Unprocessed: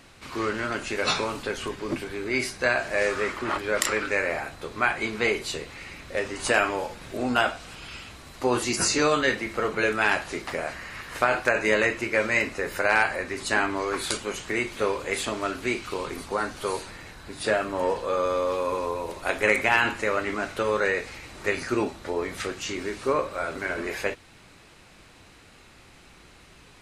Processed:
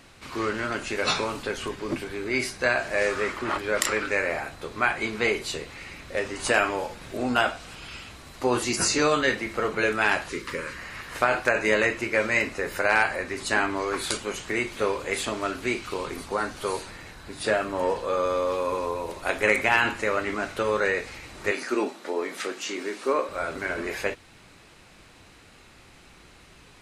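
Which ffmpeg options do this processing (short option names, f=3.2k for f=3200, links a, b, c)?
-filter_complex "[0:a]asettb=1/sr,asplit=3[a][b][c];[a]atrim=end=10.294[d];[b]atrim=start=10.29:end=10.78,asetpts=PTS-STARTPTS,afade=t=in:d=0.004:c=qsin,afade=t=out:st=0.486:d=0.004:c=qsin,asuperstop=centerf=720:order=8:qfactor=1.9[e];[c]atrim=start=10.776[f];[d][e]acrossfade=d=0.004:c1=hsin:c2=qsin[g];[g][f]acrossfade=d=0.004:c1=qsin:c2=hsin,asettb=1/sr,asplit=3[h][i][j];[h]atrim=end=21.514[k];[i]atrim=start=21.51:end=23.29,asetpts=PTS-STARTPTS,afade=t=in:d=0.004:c=qsin,afade=t=out:st=1.776:d=0.004:c=qsin,highpass=f=230:w=0.5412,highpass=f=230:w=1.3066[l];[j]atrim=start=23.286[m];[k][l]acrossfade=d=0.004:c1=hsin:c2=qsin[n];[n][m]acrossfade=d=0.004:c1=qsin:c2=hsin"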